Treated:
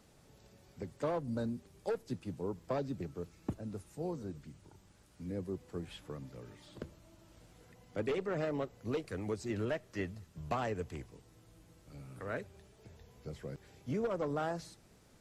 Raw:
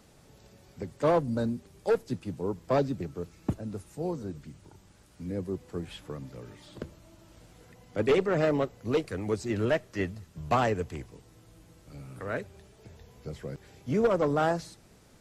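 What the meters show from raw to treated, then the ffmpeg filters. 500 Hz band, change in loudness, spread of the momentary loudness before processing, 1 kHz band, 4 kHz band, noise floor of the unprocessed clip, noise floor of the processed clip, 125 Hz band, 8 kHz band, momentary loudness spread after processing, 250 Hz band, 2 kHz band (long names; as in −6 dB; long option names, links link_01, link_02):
−9.5 dB, −9.5 dB, 19 LU, −10.0 dB, −8.5 dB, −58 dBFS, −63 dBFS, −7.5 dB, −7.0 dB, 17 LU, −8.0 dB, −9.0 dB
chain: -af "acompressor=threshold=-26dB:ratio=6,volume=-5.5dB"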